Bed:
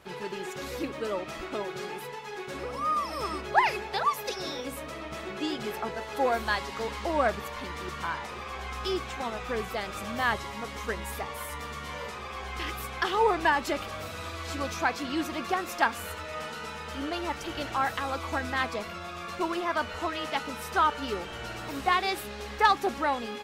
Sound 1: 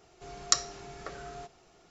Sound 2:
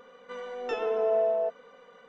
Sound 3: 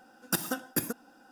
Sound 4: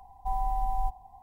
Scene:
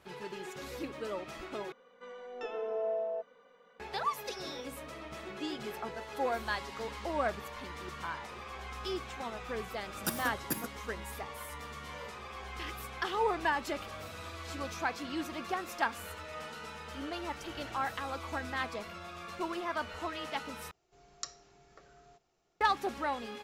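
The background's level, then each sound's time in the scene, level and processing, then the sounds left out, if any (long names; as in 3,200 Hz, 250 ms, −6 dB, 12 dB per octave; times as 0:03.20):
bed −6.5 dB
0:01.72: overwrite with 2 −8.5 dB
0:09.74: mix in 3 −5.5 dB
0:20.71: overwrite with 1 −16 dB
not used: 4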